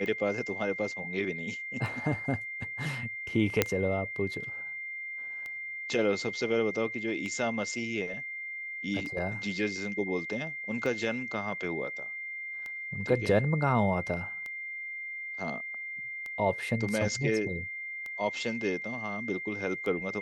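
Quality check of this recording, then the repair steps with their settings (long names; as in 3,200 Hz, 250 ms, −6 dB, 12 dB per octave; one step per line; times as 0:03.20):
scratch tick 33 1/3 rpm −26 dBFS
whistle 2,100 Hz −36 dBFS
0:03.62: click −7 dBFS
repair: click removal
notch filter 2,100 Hz, Q 30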